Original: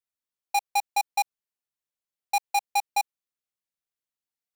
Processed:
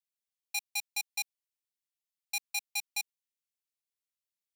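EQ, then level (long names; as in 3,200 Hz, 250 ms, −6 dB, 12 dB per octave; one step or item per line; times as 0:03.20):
tilt shelving filter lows −6 dB, about 1,100 Hz
flat-topped bell 660 Hz −14.5 dB 2.5 octaves
−7.5 dB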